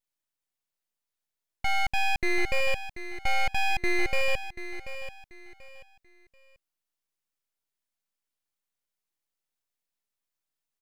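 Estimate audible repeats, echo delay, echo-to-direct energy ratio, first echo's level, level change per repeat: 3, 736 ms, −11.5 dB, −12.0 dB, −11.0 dB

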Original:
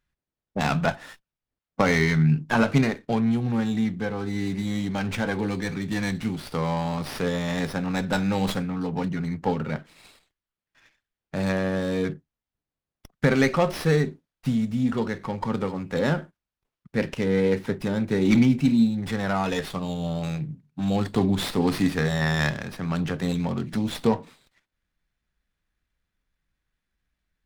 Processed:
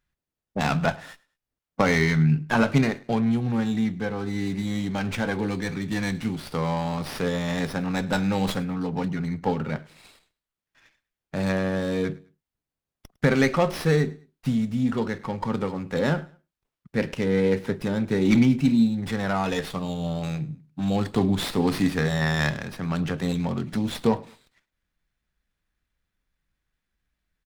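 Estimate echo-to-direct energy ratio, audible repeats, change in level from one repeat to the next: −22.5 dB, 2, −10.0 dB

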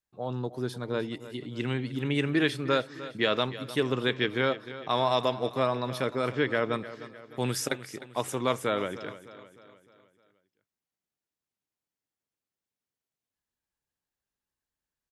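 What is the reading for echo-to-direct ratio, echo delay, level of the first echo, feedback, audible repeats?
−14.0 dB, 305 ms, −15.0 dB, 49%, 4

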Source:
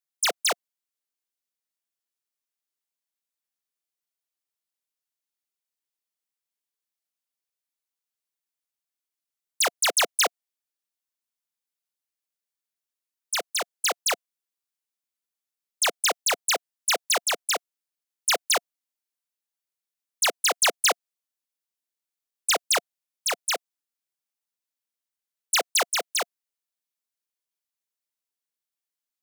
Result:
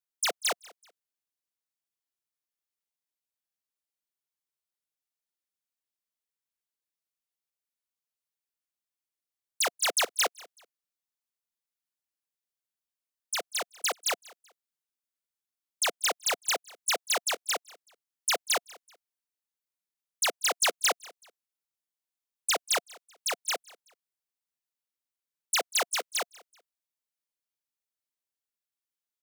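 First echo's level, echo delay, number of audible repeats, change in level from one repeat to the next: −23.0 dB, 190 ms, 2, −10.0 dB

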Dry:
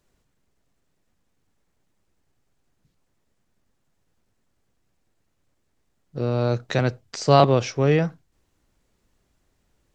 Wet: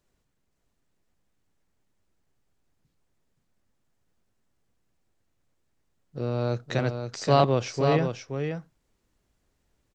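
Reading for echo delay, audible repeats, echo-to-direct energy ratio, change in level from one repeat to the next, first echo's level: 524 ms, 1, −6.5 dB, repeats not evenly spaced, −6.5 dB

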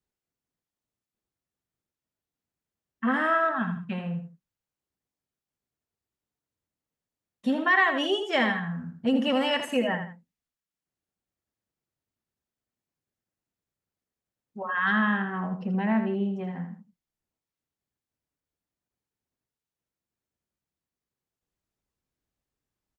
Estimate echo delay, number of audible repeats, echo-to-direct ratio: 81 ms, 2, −8.0 dB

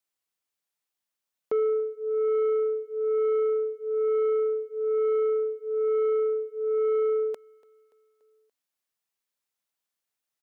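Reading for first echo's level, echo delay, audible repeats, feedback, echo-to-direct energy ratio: −24.0 dB, 288 ms, 3, 55%, −22.5 dB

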